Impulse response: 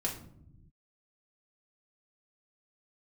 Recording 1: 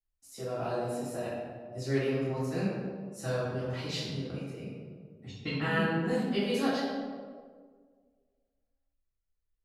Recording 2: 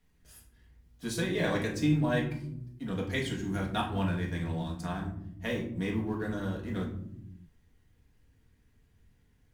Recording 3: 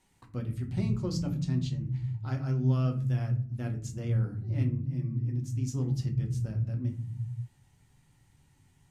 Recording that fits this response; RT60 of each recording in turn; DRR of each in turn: 2; 1.8 s, no single decay rate, no single decay rate; -15.5 dB, -2.5 dB, 2.0 dB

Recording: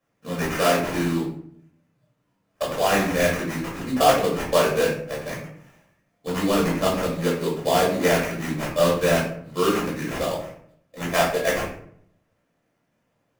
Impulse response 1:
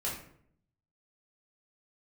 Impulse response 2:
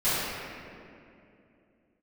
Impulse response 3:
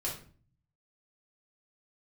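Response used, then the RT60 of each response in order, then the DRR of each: 1; 0.65 s, 2.6 s, 0.45 s; -6.0 dB, -16.5 dB, -5.5 dB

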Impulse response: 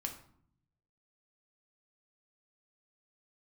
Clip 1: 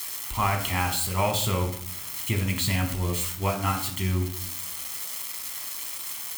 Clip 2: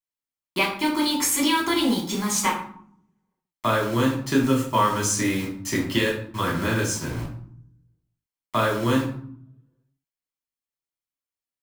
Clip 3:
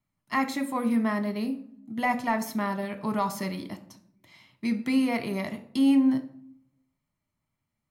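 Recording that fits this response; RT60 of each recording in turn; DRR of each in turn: 1; 0.60 s, 0.60 s, 0.65 s; 2.5 dB, -3.5 dB, 7.0 dB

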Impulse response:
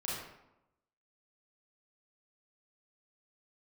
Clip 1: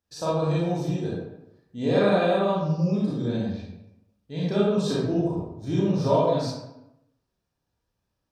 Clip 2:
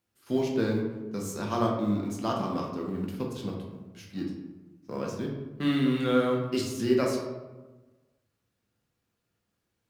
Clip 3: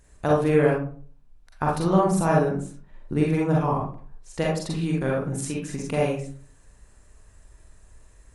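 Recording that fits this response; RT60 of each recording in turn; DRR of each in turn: 1; 0.90 s, 1.2 s, 0.45 s; -7.0 dB, -1.5 dB, -3.5 dB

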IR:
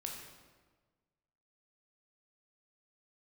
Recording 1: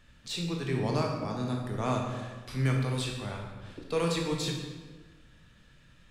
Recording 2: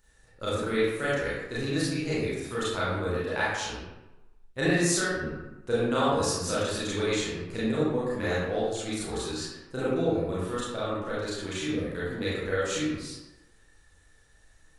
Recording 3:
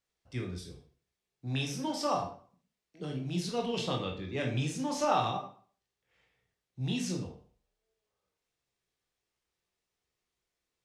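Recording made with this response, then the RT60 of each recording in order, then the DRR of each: 1; 1.4 s, 1.0 s, 0.45 s; 0.0 dB, -10.0 dB, 0.5 dB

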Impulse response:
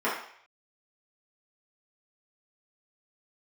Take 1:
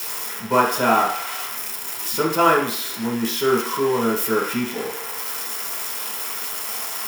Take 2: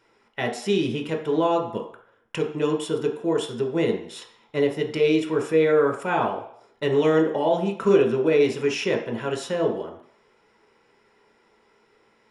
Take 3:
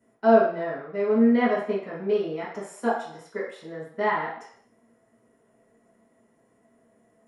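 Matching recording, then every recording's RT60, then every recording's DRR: 3; 0.60 s, 0.60 s, 0.60 s; -4.5 dB, 1.5 dB, -9.5 dB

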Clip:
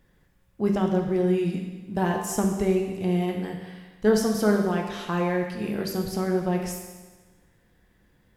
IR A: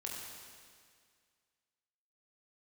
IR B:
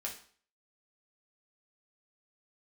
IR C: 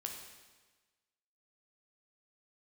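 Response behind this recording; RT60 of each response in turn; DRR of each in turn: C; 2.0 s, 0.50 s, 1.3 s; -3.0 dB, -2.0 dB, 1.5 dB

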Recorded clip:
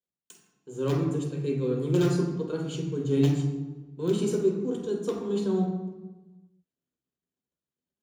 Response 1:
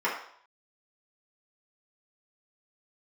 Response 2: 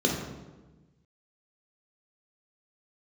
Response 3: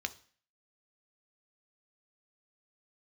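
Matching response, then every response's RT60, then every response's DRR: 2; 0.60 s, 1.2 s, 0.45 s; -7.5 dB, -1.0 dB, 8.5 dB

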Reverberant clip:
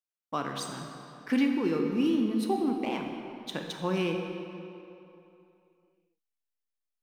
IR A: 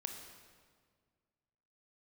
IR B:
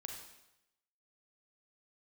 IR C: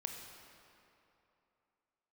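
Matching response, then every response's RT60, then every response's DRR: C; 1.8 s, 0.90 s, 2.9 s; 3.5 dB, 2.0 dB, 2.5 dB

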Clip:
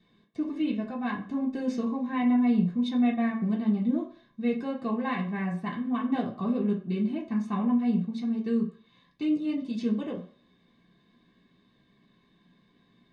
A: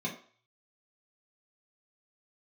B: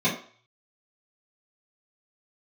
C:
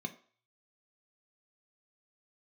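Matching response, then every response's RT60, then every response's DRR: A; 0.45 s, 0.45 s, 0.45 s; -4.0 dB, -11.0 dB, 5.5 dB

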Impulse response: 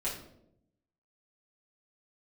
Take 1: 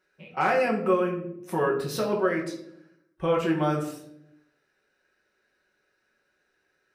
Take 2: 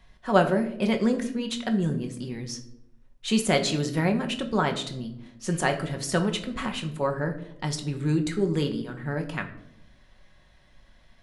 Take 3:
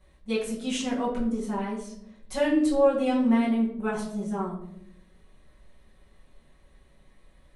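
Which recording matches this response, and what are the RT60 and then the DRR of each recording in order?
3; 0.80 s, 0.80 s, 0.80 s; -1.5 dB, 4.0 dB, -9.0 dB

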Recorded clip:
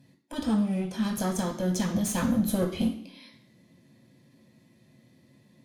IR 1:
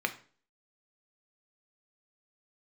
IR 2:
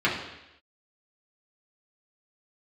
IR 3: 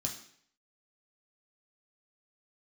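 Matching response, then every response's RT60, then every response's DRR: 3; 0.45 s, 0.90 s, 0.60 s; 5.5 dB, -7.0 dB, -1.0 dB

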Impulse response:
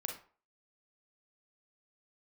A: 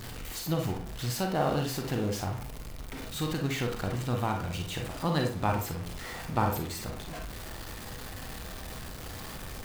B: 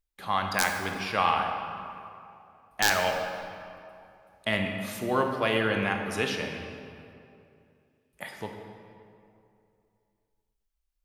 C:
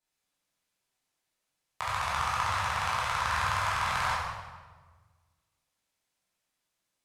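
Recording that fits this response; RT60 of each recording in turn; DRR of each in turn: A; 0.40 s, 2.7 s, 1.4 s; 2.0 dB, 3.0 dB, -9.0 dB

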